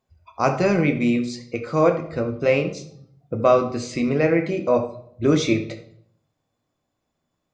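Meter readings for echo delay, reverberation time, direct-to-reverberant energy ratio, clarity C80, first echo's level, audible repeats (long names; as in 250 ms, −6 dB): no echo audible, 0.65 s, 5.0 dB, 14.0 dB, no echo audible, no echo audible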